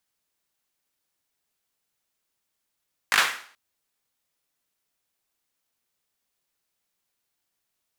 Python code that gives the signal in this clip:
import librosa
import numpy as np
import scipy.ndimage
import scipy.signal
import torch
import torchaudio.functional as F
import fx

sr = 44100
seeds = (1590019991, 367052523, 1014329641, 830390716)

y = fx.drum_clap(sr, seeds[0], length_s=0.43, bursts=4, spacing_ms=19, hz=1600.0, decay_s=0.49)